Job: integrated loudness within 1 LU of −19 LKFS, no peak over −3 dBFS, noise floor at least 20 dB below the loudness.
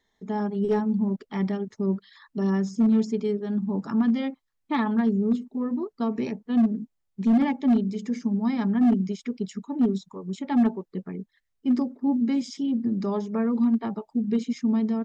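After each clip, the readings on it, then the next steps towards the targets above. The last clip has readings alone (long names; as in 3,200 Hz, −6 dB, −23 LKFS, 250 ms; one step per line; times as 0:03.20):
share of clipped samples 1.3%; peaks flattened at −15.5 dBFS; integrated loudness −25.5 LKFS; sample peak −15.5 dBFS; target loudness −19.0 LKFS
→ clipped peaks rebuilt −15.5 dBFS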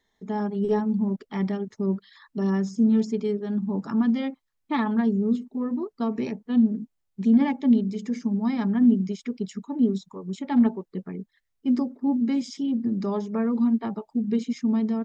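share of clipped samples 0.0%; integrated loudness −25.0 LKFS; sample peak −10.0 dBFS; target loudness −19.0 LKFS
→ level +6 dB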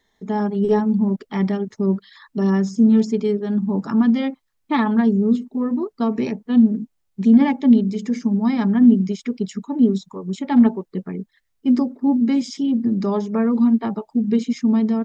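integrated loudness −19.0 LKFS; sample peak −4.0 dBFS; background noise floor −70 dBFS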